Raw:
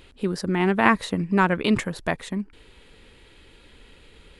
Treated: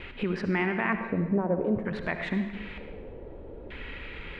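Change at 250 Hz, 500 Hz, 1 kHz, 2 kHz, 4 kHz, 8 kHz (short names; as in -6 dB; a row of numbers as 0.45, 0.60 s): -5.0 dB, -3.5 dB, -10.0 dB, -6.0 dB, -10.0 dB, under -20 dB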